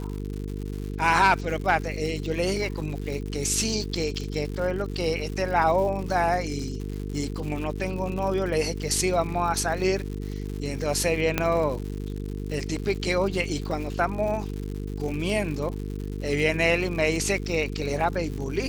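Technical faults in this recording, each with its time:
buzz 50 Hz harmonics 9 -32 dBFS
crackle 160/s -33 dBFS
11.38 pop -7 dBFS

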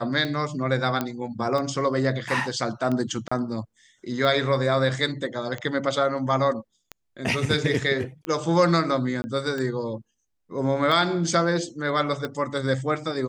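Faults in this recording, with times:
tick 45 rpm -17 dBFS
1.01 pop -11 dBFS
3.28–3.31 gap 35 ms
9.22–9.24 gap 20 ms

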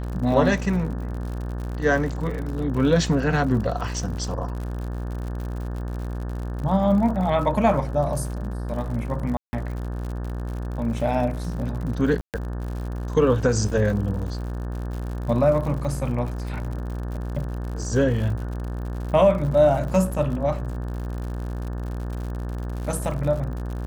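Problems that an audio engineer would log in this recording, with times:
buzz 60 Hz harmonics 30 -29 dBFS
crackle 84/s -32 dBFS
9.37–9.53 gap 0.16 s
12.21–12.34 gap 0.128 s

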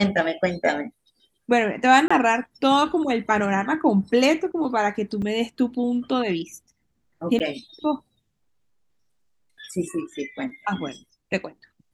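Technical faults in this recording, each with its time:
2.08–2.1 gap 25 ms
5.22 gap 4.3 ms
7.39–7.4 gap 9 ms

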